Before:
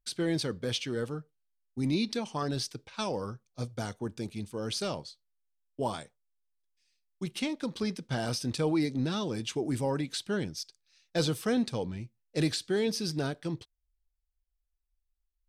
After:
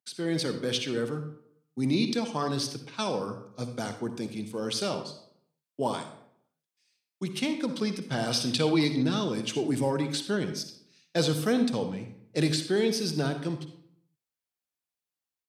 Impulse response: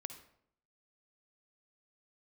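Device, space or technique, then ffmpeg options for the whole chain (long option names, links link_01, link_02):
far laptop microphone: -filter_complex "[1:a]atrim=start_sample=2205[link_01];[0:a][link_01]afir=irnorm=-1:irlink=0,highpass=frequency=130:width=0.5412,highpass=frequency=130:width=1.3066,dynaudnorm=framelen=200:gausssize=3:maxgain=6.5dB,asettb=1/sr,asplit=3[link_02][link_03][link_04];[link_02]atrim=end=8.314[link_05];[link_03]atrim=start=8.31:end=9.03,asetpts=PTS-STARTPTS,afade=type=in:duration=0.004:curve=qsin,afade=type=out:start_time=0.716:duration=0.004:curve=qsin,equalizer=frequency=3400:width_type=o:width=0.99:gain=10.5[link_06];[link_04]atrim=start=9.026[link_07];[link_05][link_06]acrossfade=duration=0.004:curve1=hsin:curve2=qsin[link_08];[link_08][link_07]acrossfade=duration=0.004:curve1=qsin:curve2=hsin"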